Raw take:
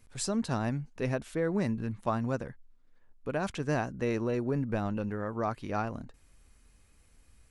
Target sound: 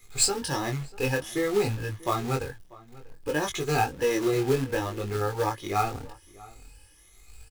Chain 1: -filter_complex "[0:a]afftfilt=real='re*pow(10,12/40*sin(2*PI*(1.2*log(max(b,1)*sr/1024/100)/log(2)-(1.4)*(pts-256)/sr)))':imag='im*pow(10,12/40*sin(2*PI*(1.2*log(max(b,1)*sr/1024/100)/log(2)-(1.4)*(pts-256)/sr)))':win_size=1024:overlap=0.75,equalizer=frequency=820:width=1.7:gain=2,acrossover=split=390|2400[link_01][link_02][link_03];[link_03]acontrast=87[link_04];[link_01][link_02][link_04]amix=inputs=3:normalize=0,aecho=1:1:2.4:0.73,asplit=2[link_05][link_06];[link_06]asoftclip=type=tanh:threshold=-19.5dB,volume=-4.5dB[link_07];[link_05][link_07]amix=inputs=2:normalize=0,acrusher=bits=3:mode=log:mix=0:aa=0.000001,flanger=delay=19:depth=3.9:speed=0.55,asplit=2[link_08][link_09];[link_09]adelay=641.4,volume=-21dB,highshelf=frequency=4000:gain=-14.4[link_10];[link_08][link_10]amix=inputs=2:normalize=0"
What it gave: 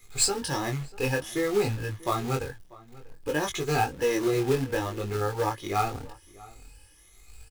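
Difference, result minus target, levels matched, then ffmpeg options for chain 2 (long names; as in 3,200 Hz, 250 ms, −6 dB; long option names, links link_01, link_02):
soft clipping: distortion +10 dB
-filter_complex "[0:a]afftfilt=real='re*pow(10,12/40*sin(2*PI*(1.2*log(max(b,1)*sr/1024/100)/log(2)-(1.4)*(pts-256)/sr)))':imag='im*pow(10,12/40*sin(2*PI*(1.2*log(max(b,1)*sr/1024/100)/log(2)-(1.4)*(pts-256)/sr)))':win_size=1024:overlap=0.75,equalizer=frequency=820:width=1.7:gain=2,acrossover=split=390|2400[link_01][link_02][link_03];[link_03]acontrast=87[link_04];[link_01][link_02][link_04]amix=inputs=3:normalize=0,aecho=1:1:2.4:0.73,asplit=2[link_05][link_06];[link_06]asoftclip=type=tanh:threshold=-12.5dB,volume=-4.5dB[link_07];[link_05][link_07]amix=inputs=2:normalize=0,acrusher=bits=3:mode=log:mix=0:aa=0.000001,flanger=delay=19:depth=3.9:speed=0.55,asplit=2[link_08][link_09];[link_09]adelay=641.4,volume=-21dB,highshelf=frequency=4000:gain=-14.4[link_10];[link_08][link_10]amix=inputs=2:normalize=0"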